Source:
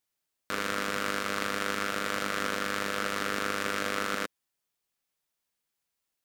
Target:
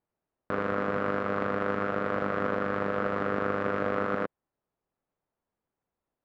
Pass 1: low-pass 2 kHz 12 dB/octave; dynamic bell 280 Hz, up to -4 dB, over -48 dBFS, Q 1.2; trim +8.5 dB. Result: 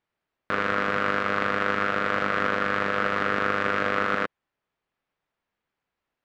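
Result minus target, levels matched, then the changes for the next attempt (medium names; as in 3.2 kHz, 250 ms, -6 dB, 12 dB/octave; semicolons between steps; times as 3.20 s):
2 kHz band +4.5 dB
change: low-pass 880 Hz 12 dB/octave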